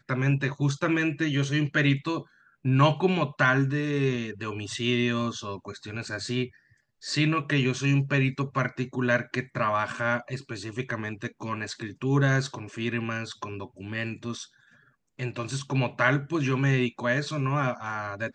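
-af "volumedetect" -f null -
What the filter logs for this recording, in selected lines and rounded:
mean_volume: -27.4 dB
max_volume: -6.9 dB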